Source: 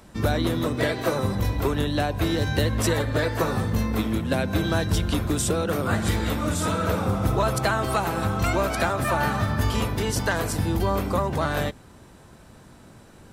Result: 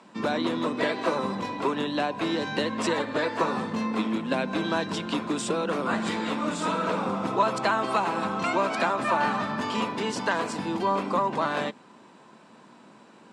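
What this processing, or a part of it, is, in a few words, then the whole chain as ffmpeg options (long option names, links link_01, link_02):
television speaker: -af "highpass=frequency=190:width=0.5412,highpass=frequency=190:width=1.3066,equalizer=frequency=220:width_type=q:width=4:gain=3,equalizer=frequency=1000:width_type=q:width=4:gain=8,equalizer=frequency=2600:width_type=q:width=4:gain=4,equalizer=frequency=6000:width_type=q:width=4:gain=-5,lowpass=frequency=7400:width=0.5412,lowpass=frequency=7400:width=1.3066,volume=-2.5dB"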